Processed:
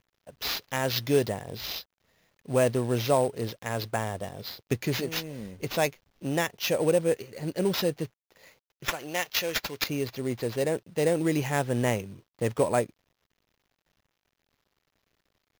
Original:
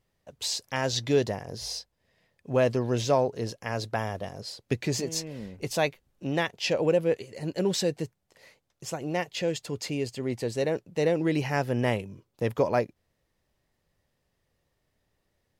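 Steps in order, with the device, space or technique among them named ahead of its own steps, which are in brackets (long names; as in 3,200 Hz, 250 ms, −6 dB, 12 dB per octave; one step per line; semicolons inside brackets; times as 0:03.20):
0:08.88–0:09.84: spectral tilt +4 dB per octave
early companding sampler (sample-rate reduction 8,900 Hz, jitter 0%; log-companded quantiser 6 bits)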